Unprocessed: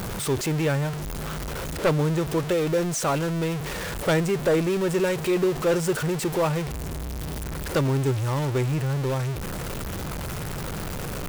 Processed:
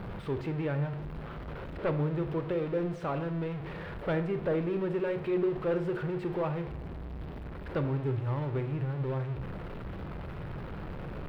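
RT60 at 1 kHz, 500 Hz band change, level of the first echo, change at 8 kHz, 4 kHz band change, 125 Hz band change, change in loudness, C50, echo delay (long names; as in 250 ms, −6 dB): 0.60 s, −7.5 dB, no echo audible, below −35 dB, −18.0 dB, −7.0 dB, −8.0 dB, 12.0 dB, no echo audible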